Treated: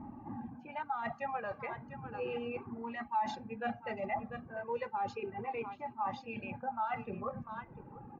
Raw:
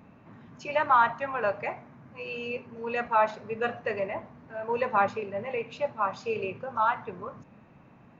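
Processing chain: reverb removal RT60 0.68 s; low-pass opened by the level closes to 960 Hz, open at -21 dBFS; echo 0.697 s -22.5 dB; reverse; compressor 16:1, threshold -38 dBFS, peak gain reduction 22.5 dB; reverse; small resonant body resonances 230/820 Hz, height 12 dB, ringing for 40 ms; limiter -31.5 dBFS, peak gain reduction 6.5 dB; notch 430 Hz, Q 12; comb 2.5 ms, depth 39%; cascading flanger falling 0.34 Hz; gain +7.5 dB

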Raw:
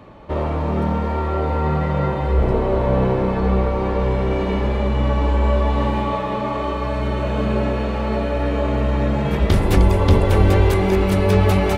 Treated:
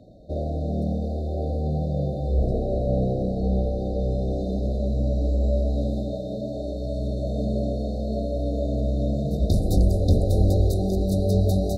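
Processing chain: brick-wall FIR band-stop 770–3600 Hz; bell 390 Hz -6.5 dB 0.34 oct; gain -4.5 dB

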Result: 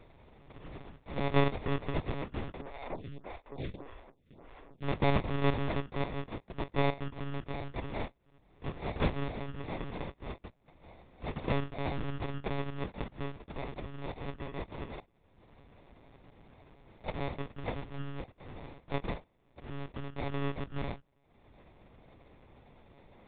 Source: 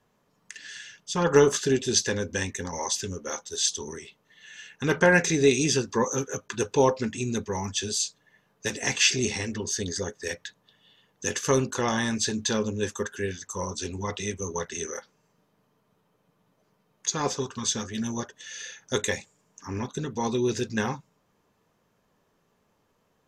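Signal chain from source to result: upward compressor, threshold -32 dBFS; sample-and-hold 30×; monotone LPC vocoder at 8 kHz 140 Hz; 2.61–4.83 photocell phaser 1.7 Hz; gain -7.5 dB

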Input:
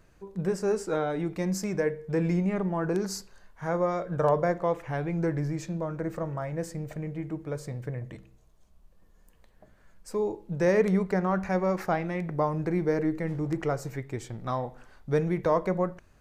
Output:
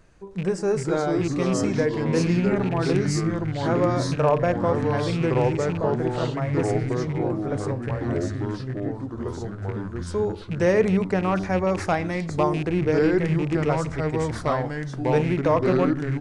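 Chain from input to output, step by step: rattling part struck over -29 dBFS, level -32 dBFS; 11.75–12.63 high shelf 3200 Hz +9 dB; echoes that change speed 0.319 s, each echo -3 st, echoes 3; downsampling 22050 Hz; gain +3.5 dB

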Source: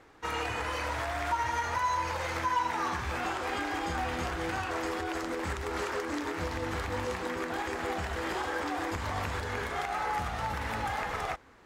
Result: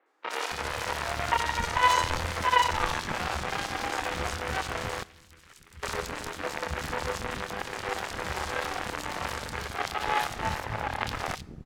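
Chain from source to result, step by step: doubler 26 ms -4 dB; added harmonics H 2 -8 dB, 3 -11 dB, 4 -22 dB, 7 -30 dB, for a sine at -18.5 dBFS; 10.59–11.01 high shelf 3100 Hz -11.5 dB; three bands offset in time mids, highs, lows 60/270 ms, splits 300/3300 Hz; in parallel at -1 dB: limiter -31 dBFS, peak gain reduction 15 dB; 5.03–5.83 on the sum: passive tone stack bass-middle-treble 6-0-2; on a send at -21 dB: reverb, pre-delay 3 ms; on the sum: gain +5.5 dB

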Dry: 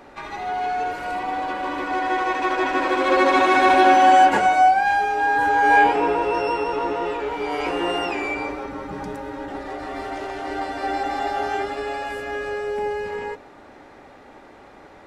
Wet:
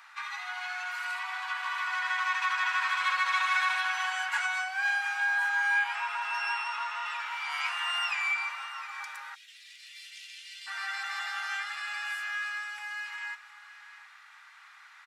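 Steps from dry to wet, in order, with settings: echo 0.712 s -15.5 dB; compressor 4:1, threshold -19 dBFS, peak gain reduction 8.5 dB; steep high-pass 1100 Hz 36 dB/oct, from 9.34 s 2500 Hz, from 10.66 s 1200 Hz

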